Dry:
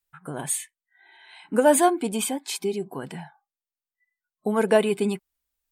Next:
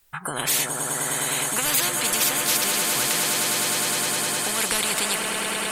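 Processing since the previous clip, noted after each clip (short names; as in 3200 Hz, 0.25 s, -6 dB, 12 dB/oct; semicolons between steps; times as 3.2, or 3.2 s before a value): swelling echo 0.103 s, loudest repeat 8, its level -16.5 dB; spectral compressor 10:1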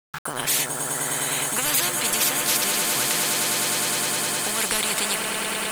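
sample gate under -31 dBFS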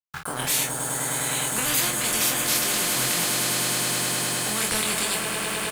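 bell 66 Hz +8 dB 2.3 oct; on a send: early reflections 23 ms -3 dB, 47 ms -7 dB; on the sum: gain -3.5 dB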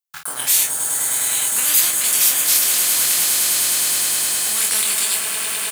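tilt +3.5 dB/oct; gain -2.5 dB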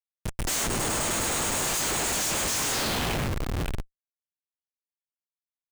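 band-pass sweep 6600 Hz -> 680 Hz, 2.68–3.75; delay with a stepping band-pass 0.548 s, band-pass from 2600 Hz, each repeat -1.4 oct, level -2 dB; Schmitt trigger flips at -25 dBFS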